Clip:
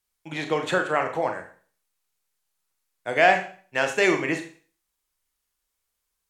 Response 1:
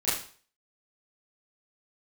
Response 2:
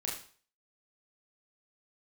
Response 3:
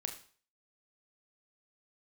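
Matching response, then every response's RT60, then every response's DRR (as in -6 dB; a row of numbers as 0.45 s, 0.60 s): 3; 0.45 s, 0.45 s, 0.45 s; -12.5 dB, -3.5 dB, 4.5 dB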